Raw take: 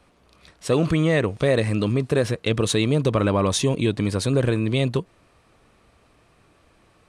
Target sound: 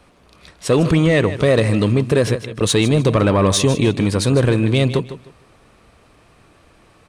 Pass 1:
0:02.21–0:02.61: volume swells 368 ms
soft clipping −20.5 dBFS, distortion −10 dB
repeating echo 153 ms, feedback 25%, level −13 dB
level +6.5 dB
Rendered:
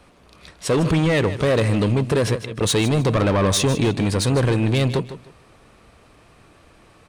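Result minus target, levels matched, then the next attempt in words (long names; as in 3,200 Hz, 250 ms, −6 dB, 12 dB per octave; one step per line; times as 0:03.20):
soft clipping: distortion +10 dB
0:02.21–0:02.61: volume swells 368 ms
soft clipping −12 dBFS, distortion −20 dB
repeating echo 153 ms, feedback 25%, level −13 dB
level +6.5 dB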